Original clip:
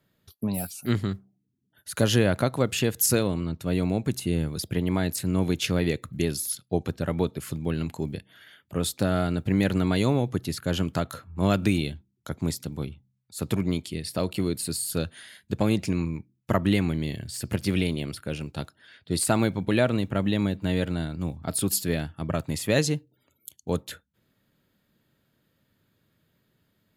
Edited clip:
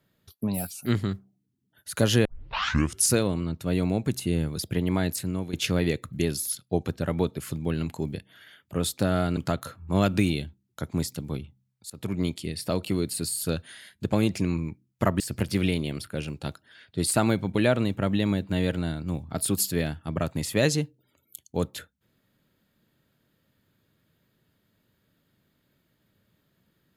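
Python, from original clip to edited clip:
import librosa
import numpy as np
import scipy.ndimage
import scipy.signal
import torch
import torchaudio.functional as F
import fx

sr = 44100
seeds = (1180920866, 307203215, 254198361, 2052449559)

y = fx.edit(x, sr, fx.tape_start(start_s=2.25, length_s=0.86),
    fx.fade_out_to(start_s=5.12, length_s=0.41, floor_db=-13.5),
    fx.cut(start_s=9.37, length_s=1.48),
    fx.fade_in_from(start_s=13.38, length_s=0.35, floor_db=-23.5),
    fx.cut(start_s=16.68, length_s=0.65), tone=tone)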